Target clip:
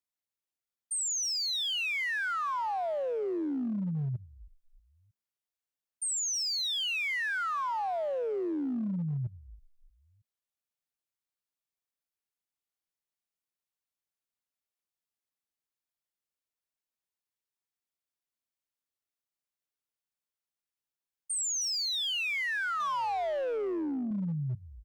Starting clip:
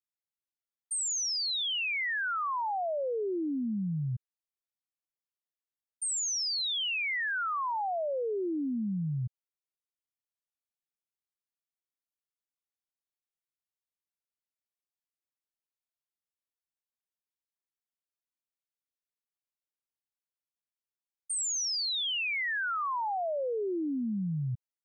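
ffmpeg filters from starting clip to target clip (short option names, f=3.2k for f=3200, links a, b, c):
-filter_complex "[0:a]asplit=4[a][b][c][d];[b]adelay=314,afreqshift=-76,volume=-18dB[e];[c]adelay=628,afreqshift=-152,volume=-26.4dB[f];[d]adelay=942,afreqshift=-228,volume=-34.8dB[g];[a][e][f][g]amix=inputs=4:normalize=0,asettb=1/sr,asplit=3[h][i][j];[h]atrim=end=22.804[k];[i]atrim=start=22.8:end=24.11,asetpts=PTS-STARTPTS,afade=t=in:d=0.004:c=qsin,afade=t=out:st=1.306:d=0.004:c=qsin,asplit=2[l][m];[m]highpass=f=720:p=1,volume=14dB,asoftclip=type=tanh:threshold=-27dB[n];[l][n]amix=inputs=2:normalize=0,lowpass=f=2.8k:p=1,volume=-6dB[o];[j]atrim=start=24.106[p];[k][o]acrossfade=d=0.004:c1=hsin:c2=qsin[q];[q][p]acrossfade=d=0.004:c1=qsin:c2=hsin,asoftclip=type=hard:threshold=-29dB"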